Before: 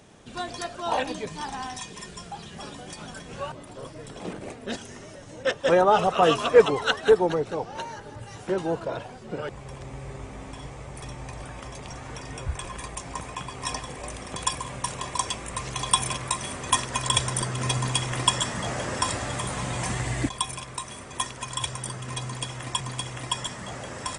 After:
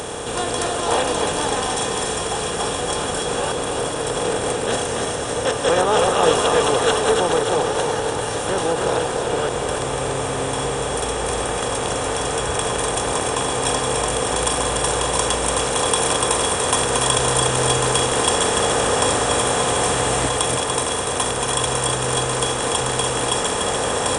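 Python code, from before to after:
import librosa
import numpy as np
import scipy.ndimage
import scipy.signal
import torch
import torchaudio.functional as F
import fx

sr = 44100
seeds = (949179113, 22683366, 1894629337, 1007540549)

p1 = fx.bin_compress(x, sr, power=0.4)
p2 = fx.high_shelf(p1, sr, hz=6100.0, db=5.5)
p3 = p2 + fx.echo_feedback(p2, sr, ms=291, feedback_pct=51, wet_db=-5.0, dry=0)
p4 = fx.end_taper(p3, sr, db_per_s=120.0)
y = F.gain(torch.from_numpy(p4), -4.0).numpy()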